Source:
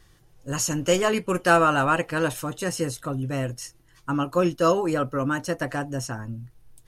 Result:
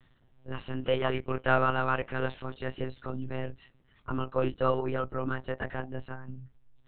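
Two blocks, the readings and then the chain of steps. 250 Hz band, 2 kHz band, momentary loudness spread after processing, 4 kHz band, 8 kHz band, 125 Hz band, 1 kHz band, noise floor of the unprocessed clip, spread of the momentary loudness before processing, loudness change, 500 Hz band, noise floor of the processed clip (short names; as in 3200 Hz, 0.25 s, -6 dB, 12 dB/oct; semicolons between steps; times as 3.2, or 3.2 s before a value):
-10.0 dB, -7.5 dB, 15 LU, -9.5 dB, under -40 dB, -6.0 dB, -7.0 dB, -57 dBFS, 14 LU, -7.5 dB, -6.5 dB, -65 dBFS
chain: monotone LPC vocoder at 8 kHz 130 Hz; gain -6.5 dB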